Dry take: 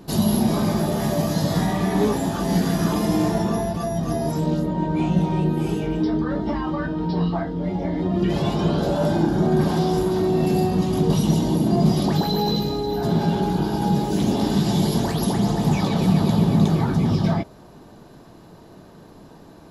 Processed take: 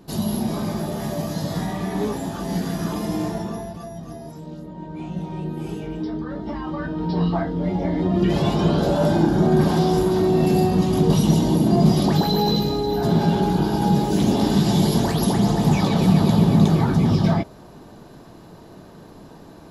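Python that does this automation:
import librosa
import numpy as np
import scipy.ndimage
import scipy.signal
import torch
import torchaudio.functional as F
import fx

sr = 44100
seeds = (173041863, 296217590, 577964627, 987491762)

y = fx.gain(x, sr, db=fx.line((3.24, -4.5), (4.43, -14.5), (5.71, -6.0), (6.36, -6.0), (7.34, 2.0)))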